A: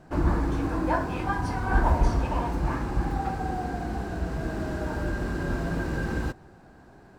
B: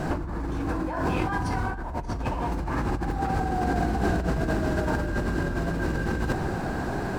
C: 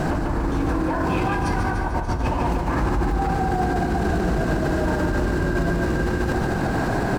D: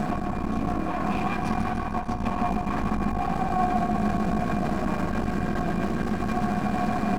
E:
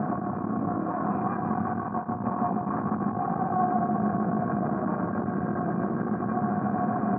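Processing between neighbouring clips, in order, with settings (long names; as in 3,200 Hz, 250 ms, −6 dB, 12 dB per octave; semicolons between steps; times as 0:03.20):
in parallel at 0 dB: brickwall limiter −20 dBFS, peak gain reduction 10 dB; on the sum: compressor whose output falls as the input rises −33 dBFS, ratio −1; level +6 dB
repeating echo 147 ms, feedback 55%, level −6 dB; brickwall limiter −20.5 dBFS, peak gain reduction 10.5 dB; level +7 dB
half-wave rectification; hollow resonant body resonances 210/720/1,100/2,400 Hz, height 15 dB, ringing for 90 ms; level −4.5 dB
elliptic band-pass filter 110–1,400 Hz, stop band 40 dB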